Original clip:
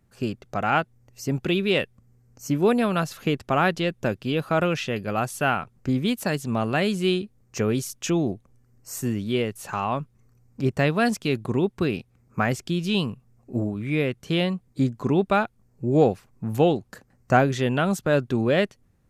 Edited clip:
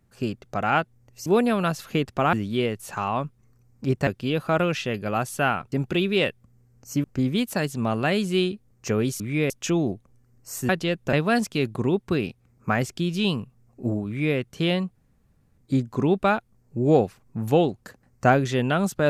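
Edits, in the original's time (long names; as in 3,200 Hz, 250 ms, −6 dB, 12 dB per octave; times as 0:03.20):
0:01.26–0:02.58: move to 0:05.74
0:03.65–0:04.09: swap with 0:09.09–0:10.83
0:13.77–0:14.07: duplicate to 0:07.90
0:14.65: splice in room tone 0.63 s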